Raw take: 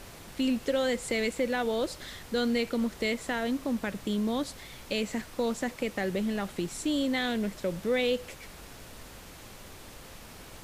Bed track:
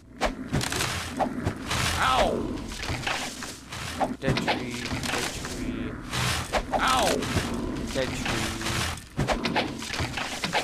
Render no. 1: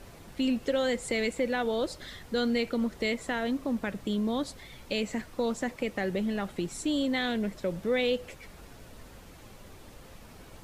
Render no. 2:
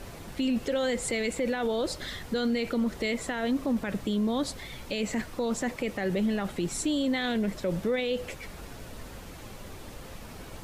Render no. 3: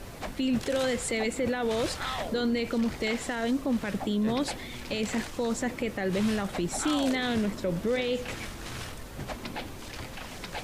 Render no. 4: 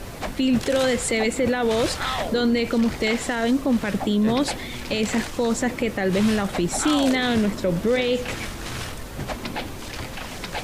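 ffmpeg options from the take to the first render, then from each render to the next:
-af "afftdn=nr=7:nf=-48"
-af "acontrast=58,alimiter=limit=0.0944:level=0:latency=1:release=27"
-filter_complex "[1:a]volume=0.251[s0];[0:a][s0]amix=inputs=2:normalize=0"
-af "volume=2.24"

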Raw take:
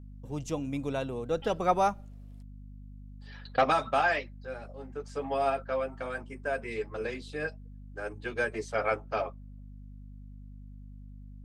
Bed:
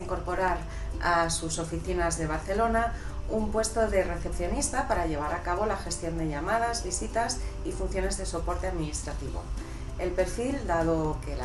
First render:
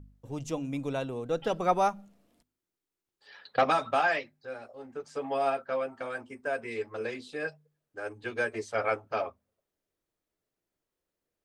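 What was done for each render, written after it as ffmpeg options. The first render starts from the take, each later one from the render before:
-af "bandreject=f=50:t=h:w=4,bandreject=f=100:t=h:w=4,bandreject=f=150:t=h:w=4,bandreject=f=200:t=h:w=4,bandreject=f=250:t=h:w=4"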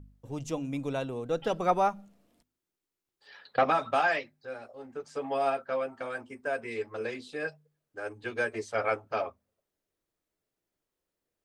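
-filter_complex "[0:a]asettb=1/sr,asplit=3[s0][s1][s2];[s0]atrim=end=1.704[s3];[s1]atrim=start=1.7:end=3.83,asetpts=PTS-STARTPTS,afade=t=in:d=0.004:c=qsin,afade=t=out:st=2.126:d=0.004:c=qsin,acrossover=split=3000[s4][s5];[s5]acompressor=threshold=0.00355:ratio=4:attack=1:release=60[s6];[s4][s6]amix=inputs=2:normalize=0[s7];[s2]atrim=start=3.826[s8];[s3][s7]acrossfade=d=0.004:c1=hsin:c2=qsin[s9];[s9][s8]acrossfade=d=0.004:c1=qsin:c2=hsin"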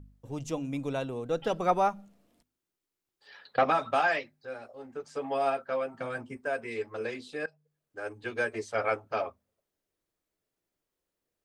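-filter_complex "[0:a]asettb=1/sr,asplit=3[s0][s1][s2];[s0]atrim=end=5.944[s3];[s1]atrim=start=5.94:end=6.37,asetpts=PTS-STARTPTS,afade=t=in:d=0.004:c=qsin,afade=t=out:st=0.426:d=0.004:c=qsin,equalizer=f=150:t=o:w=1:g=13[s4];[s2]atrim=start=6.366[s5];[s3][s4]acrossfade=d=0.004:c1=hsin:c2=qsin[s6];[s6][s5]acrossfade=d=0.004:c1=qsin:c2=hsin,asplit=2[s7][s8];[s7]atrim=end=7.46,asetpts=PTS-STARTPTS,afade=t=out:st=7.456:d=0.004:c=hsin:silence=0.112202[s9];[s8]atrim=start=7.46,asetpts=PTS-STARTPTS,afade=t=in:d=0.65:c=qsin:silence=0.112202[s10];[s9][s10]concat=n=2:v=0:a=1"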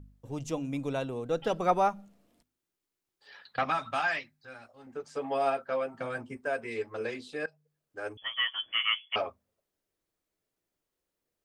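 -filter_complex "[0:a]asettb=1/sr,asplit=3[s0][s1][s2];[s0]atrim=end=3.424[s3];[s1]atrim=start=3.42:end=4.87,asetpts=PTS-STARTPTS,afade=t=in:d=0.004:c=qsin,afade=t=out:st=1.446:d=0.004:c=qsin,equalizer=f=470:t=o:w=1.3:g=-12.5[s4];[s2]atrim=start=4.866[s5];[s3][s4]acrossfade=d=0.004:c1=hsin:c2=qsin[s6];[s6][s5]acrossfade=d=0.004:c1=qsin:c2=hsin,asettb=1/sr,asplit=3[s7][s8][s9];[s7]atrim=end=8.174[s10];[s8]atrim=start=8.17:end=9.16,asetpts=PTS-STARTPTS,afade=t=in:d=0.004:c=qsin,afade=t=out:st=0.986:d=0.004:c=qsin,lowpass=f=3000:t=q:w=0.5098,lowpass=f=3000:t=q:w=0.6013,lowpass=f=3000:t=q:w=0.9,lowpass=f=3000:t=q:w=2.563,afreqshift=-3500[s11];[s9]atrim=start=9.156[s12];[s10][s11]acrossfade=d=0.004:c1=hsin:c2=qsin[s13];[s13][s12]acrossfade=d=0.004:c1=qsin:c2=hsin"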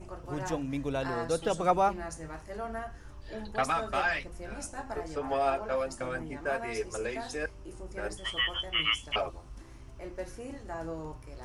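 -filter_complex "[1:a]volume=0.251[s0];[0:a][s0]amix=inputs=2:normalize=0"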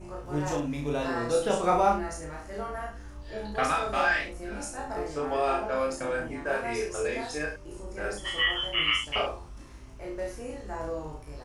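-filter_complex "[0:a]asplit=2[s0][s1];[s1]adelay=34,volume=0.75[s2];[s0][s2]amix=inputs=2:normalize=0,aecho=1:1:20|68:0.562|0.398"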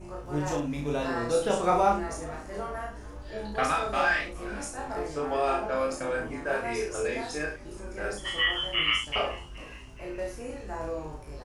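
-filter_complex "[0:a]asplit=6[s0][s1][s2][s3][s4][s5];[s1]adelay=421,afreqshift=-100,volume=0.1[s6];[s2]adelay=842,afreqshift=-200,volume=0.0589[s7];[s3]adelay=1263,afreqshift=-300,volume=0.0347[s8];[s4]adelay=1684,afreqshift=-400,volume=0.0207[s9];[s5]adelay=2105,afreqshift=-500,volume=0.0122[s10];[s0][s6][s7][s8][s9][s10]amix=inputs=6:normalize=0"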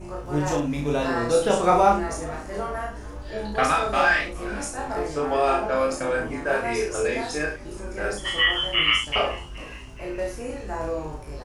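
-af "volume=1.88"

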